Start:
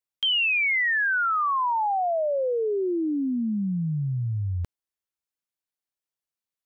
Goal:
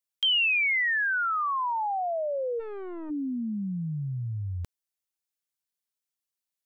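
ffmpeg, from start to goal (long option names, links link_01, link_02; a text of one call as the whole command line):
ffmpeg -i in.wav -filter_complex "[0:a]highshelf=frequency=2800:gain=8.5,asplit=3[link_01][link_02][link_03];[link_01]afade=type=out:start_time=2.59:duration=0.02[link_04];[link_02]aeval=exprs='(tanh(35.5*val(0)+0.6)-tanh(0.6))/35.5':channel_layout=same,afade=type=in:start_time=2.59:duration=0.02,afade=type=out:start_time=3.09:duration=0.02[link_05];[link_03]afade=type=in:start_time=3.09:duration=0.02[link_06];[link_04][link_05][link_06]amix=inputs=3:normalize=0,volume=-5dB" out.wav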